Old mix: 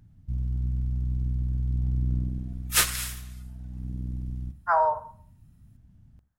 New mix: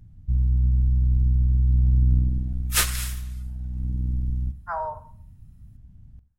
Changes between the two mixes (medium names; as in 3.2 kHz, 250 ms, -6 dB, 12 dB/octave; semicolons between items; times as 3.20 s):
speech -7.5 dB; first sound: add bass shelf 100 Hz +12 dB